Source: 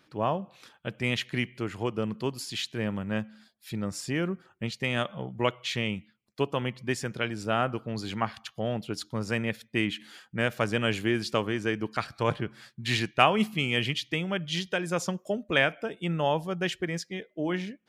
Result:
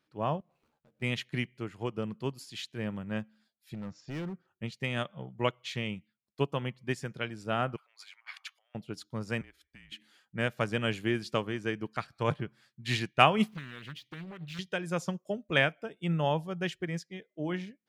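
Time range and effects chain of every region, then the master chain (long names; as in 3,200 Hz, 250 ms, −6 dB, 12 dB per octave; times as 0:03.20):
0:00.40–0:01.02: running median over 25 samples + downward compressor 8 to 1, threshold −48 dBFS + double-tracking delay 13 ms −3.5 dB
0:03.74–0:04.48: Butterworth low-pass 6,800 Hz 72 dB per octave + high-shelf EQ 2,600 Hz −5.5 dB + gain into a clipping stage and back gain 29.5 dB
0:07.76–0:08.75: parametric band 2,200 Hz +10 dB 0.35 octaves + compressor whose output falls as the input rises −37 dBFS, ratio −0.5 + high-pass filter 980 Hz 24 dB per octave
0:09.41–0:09.92: high-pass filter 450 Hz 6 dB per octave + downward compressor 4 to 1, threshold −39 dBFS + frequency shifter −150 Hz
0:13.48–0:14.59: running median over 5 samples + downward compressor, threshold −32 dBFS + highs frequency-modulated by the lows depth 0.59 ms
whole clip: dynamic equaliser 150 Hz, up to +6 dB, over −46 dBFS, Q 2.7; expander for the loud parts 1.5 to 1, over −46 dBFS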